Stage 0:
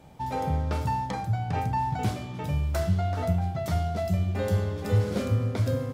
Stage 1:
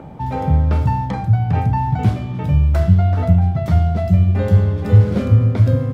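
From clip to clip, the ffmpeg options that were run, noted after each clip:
ffmpeg -i in.wav -filter_complex "[0:a]bass=frequency=250:gain=8,treble=frequency=4000:gain=-10,acrossover=split=180|1600[link_01][link_02][link_03];[link_02]acompressor=mode=upward:threshold=-35dB:ratio=2.5[link_04];[link_01][link_04][link_03]amix=inputs=3:normalize=0,volume=5.5dB" out.wav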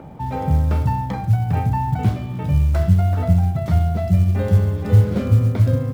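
ffmpeg -i in.wav -af "acrusher=bits=9:mode=log:mix=0:aa=0.000001,volume=-2.5dB" out.wav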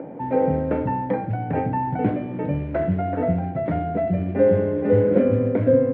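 ffmpeg -i in.wav -af "highpass=250,equalizer=frequency=290:width_type=q:width=4:gain=9,equalizer=frequency=510:width_type=q:width=4:gain=9,equalizer=frequency=830:width_type=q:width=4:gain=-4,equalizer=frequency=1200:width_type=q:width=4:gain=-10,lowpass=frequency=2100:width=0.5412,lowpass=frequency=2100:width=1.3066,volume=3.5dB" out.wav

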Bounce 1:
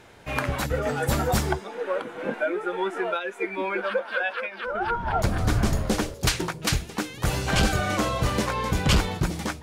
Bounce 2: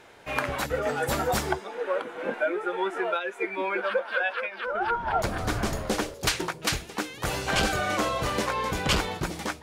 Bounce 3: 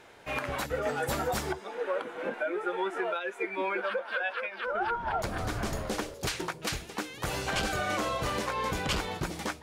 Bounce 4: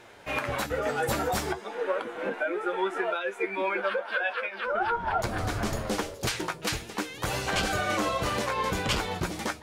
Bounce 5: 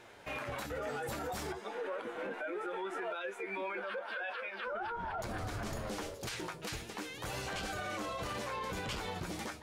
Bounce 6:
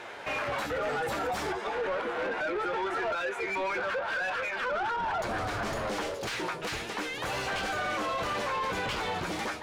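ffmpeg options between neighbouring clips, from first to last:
ffmpeg -i in.wav -af "bass=frequency=250:gain=-9,treble=frequency=4000:gain=-2" out.wav
ffmpeg -i in.wav -af "alimiter=limit=-19dB:level=0:latency=1:release=156,volume=-2dB" out.wav
ffmpeg -i in.wav -af "flanger=delay=8.3:depth=2.9:regen=55:speed=1.9:shape=triangular,volume=7dB" out.wav
ffmpeg -i in.wav -af "alimiter=level_in=2.5dB:limit=-24dB:level=0:latency=1:release=42,volume=-2.5dB,volume=-4.5dB" out.wav
ffmpeg -i in.wav -filter_complex "[0:a]asplit=2[link_01][link_02];[link_02]highpass=frequency=720:poles=1,volume=16dB,asoftclip=type=tanh:threshold=-30.5dB[link_03];[link_01][link_03]amix=inputs=2:normalize=0,lowpass=frequency=2400:poles=1,volume=-6dB,volume=6dB" out.wav

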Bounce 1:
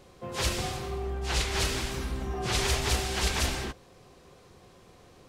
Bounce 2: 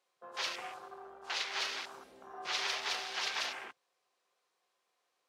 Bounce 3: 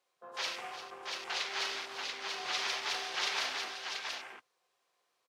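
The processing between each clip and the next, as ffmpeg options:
ffmpeg -i in.wav -af "afwtdn=0.0141,highpass=830,volume=-3.5dB" out.wav
ffmpeg -i in.wav -af "aecho=1:1:50|347|686:0.316|0.251|0.668" out.wav

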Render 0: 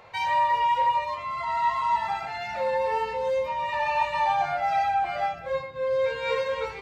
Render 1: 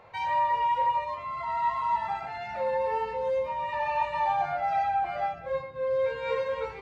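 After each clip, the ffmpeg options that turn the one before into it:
ffmpeg -i in.wav -af "highshelf=frequency=2600:gain=-10.5,volume=-1.5dB" out.wav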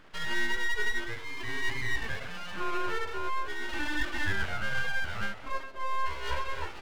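ffmpeg -i in.wav -af "aeval=exprs='abs(val(0))':channel_layout=same" out.wav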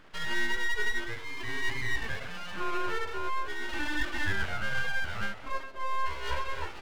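ffmpeg -i in.wav -af anull out.wav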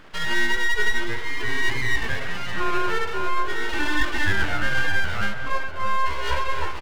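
ffmpeg -i in.wav -filter_complex "[0:a]asplit=2[link_01][link_02];[link_02]adelay=641.4,volume=-8dB,highshelf=frequency=4000:gain=-14.4[link_03];[link_01][link_03]amix=inputs=2:normalize=0,volume=8dB" out.wav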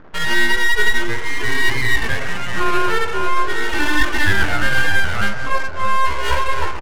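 ffmpeg -i in.wav -af "adynamicsmooth=sensitivity=8:basefreq=760,volume=6dB" out.wav

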